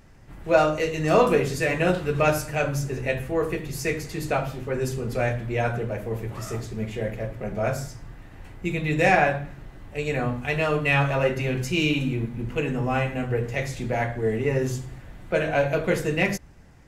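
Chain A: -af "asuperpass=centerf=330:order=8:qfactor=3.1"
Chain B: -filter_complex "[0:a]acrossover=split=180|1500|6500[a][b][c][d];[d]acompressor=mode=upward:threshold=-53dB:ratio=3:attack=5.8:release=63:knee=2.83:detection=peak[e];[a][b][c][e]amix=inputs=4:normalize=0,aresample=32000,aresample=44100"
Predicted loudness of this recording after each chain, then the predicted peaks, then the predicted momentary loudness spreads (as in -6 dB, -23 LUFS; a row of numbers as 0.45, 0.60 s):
-36.0, -25.0 LUFS; -18.0, -5.0 dBFS; 14, 12 LU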